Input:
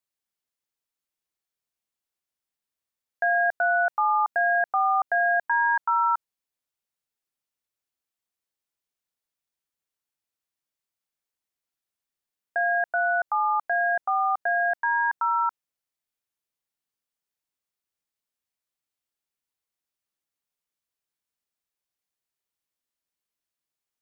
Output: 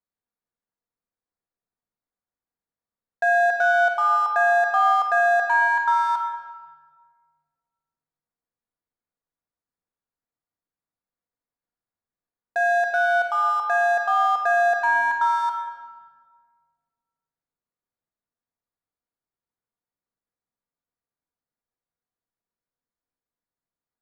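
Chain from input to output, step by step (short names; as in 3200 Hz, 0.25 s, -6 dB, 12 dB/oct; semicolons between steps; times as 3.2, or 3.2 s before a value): Wiener smoothing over 15 samples; 14.29–15.38 low shelf 390 Hz +6.5 dB; shoebox room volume 2000 m³, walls mixed, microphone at 1.8 m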